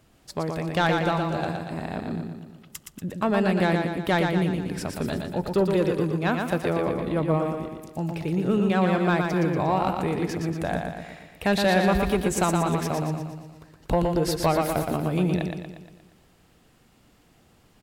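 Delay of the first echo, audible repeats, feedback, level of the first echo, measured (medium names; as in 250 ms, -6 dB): 118 ms, 6, 53%, -4.5 dB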